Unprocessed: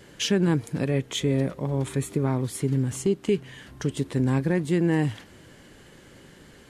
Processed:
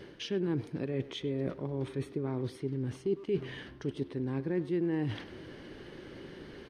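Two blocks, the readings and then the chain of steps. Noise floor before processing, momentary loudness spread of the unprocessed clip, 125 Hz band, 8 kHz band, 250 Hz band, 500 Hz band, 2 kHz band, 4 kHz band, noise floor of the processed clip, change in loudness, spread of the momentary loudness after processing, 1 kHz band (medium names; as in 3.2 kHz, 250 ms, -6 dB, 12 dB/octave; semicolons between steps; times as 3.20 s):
-51 dBFS, 7 LU, -11.0 dB, under -20 dB, -9.0 dB, -7.0 dB, -10.5 dB, -11.0 dB, -51 dBFS, -9.0 dB, 15 LU, -11.5 dB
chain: reverse; compression 6:1, threshold -34 dBFS, peak gain reduction 15.5 dB; reverse; Savitzky-Golay filter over 15 samples; peaking EQ 360 Hz +8 dB 0.72 oct; speakerphone echo 100 ms, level -15 dB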